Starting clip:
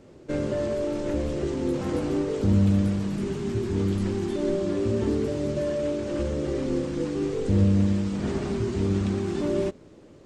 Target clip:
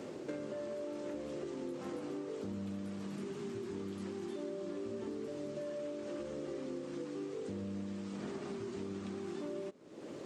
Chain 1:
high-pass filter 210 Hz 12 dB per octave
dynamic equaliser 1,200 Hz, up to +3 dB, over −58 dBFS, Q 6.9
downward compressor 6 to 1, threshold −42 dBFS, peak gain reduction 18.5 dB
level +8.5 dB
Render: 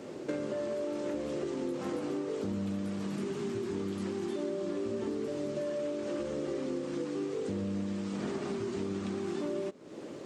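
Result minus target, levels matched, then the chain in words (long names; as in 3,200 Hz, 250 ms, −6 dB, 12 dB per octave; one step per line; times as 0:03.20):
downward compressor: peak gain reduction −6.5 dB
high-pass filter 210 Hz 12 dB per octave
dynamic equaliser 1,200 Hz, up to +3 dB, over −58 dBFS, Q 6.9
downward compressor 6 to 1, threshold −50 dBFS, peak gain reduction 25 dB
level +8.5 dB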